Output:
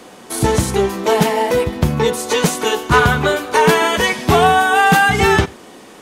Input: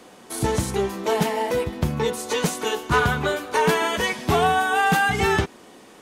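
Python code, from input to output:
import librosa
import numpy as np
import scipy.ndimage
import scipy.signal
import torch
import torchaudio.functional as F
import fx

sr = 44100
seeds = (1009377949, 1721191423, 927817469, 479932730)

y = x + 10.0 ** (-24.0 / 20.0) * np.pad(x, (int(89 * sr / 1000.0), 0))[:len(x)]
y = y * 10.0 ** (7.5 / 20.0)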